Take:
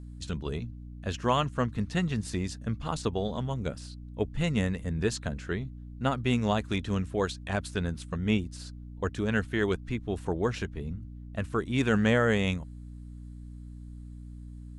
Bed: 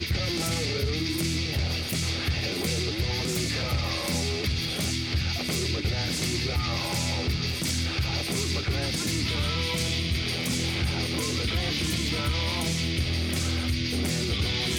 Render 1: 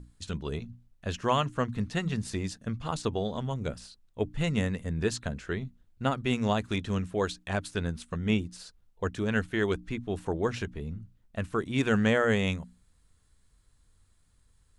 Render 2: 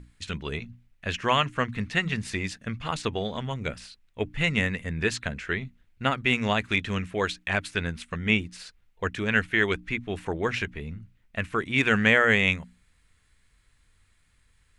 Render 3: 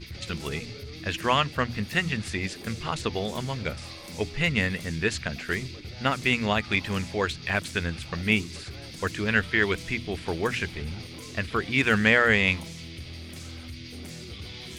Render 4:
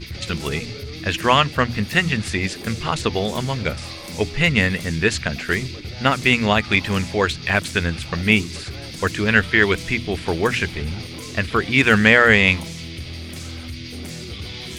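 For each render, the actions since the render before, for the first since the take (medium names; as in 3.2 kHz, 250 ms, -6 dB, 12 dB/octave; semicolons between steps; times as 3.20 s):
hum notches 60/120/180/240/300 Hz
peaking EQ 2.2 kHz +13.5 dB 1.2 oct
add bed -13 dB
trim +7.5 dB; peak limiter -1 dBFS, peak gain reduction 1 dB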